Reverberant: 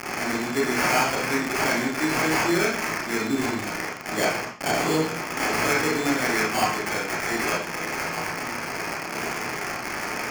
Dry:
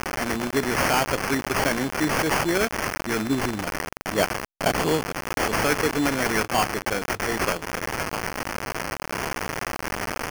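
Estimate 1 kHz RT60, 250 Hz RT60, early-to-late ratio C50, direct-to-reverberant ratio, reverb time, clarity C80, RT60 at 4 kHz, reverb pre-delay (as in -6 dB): 0.45 s, 0.50 s, 3.0 dB, -3.0 dB, 0.45 s, 8.0 dB, 0.40 s, 28 ms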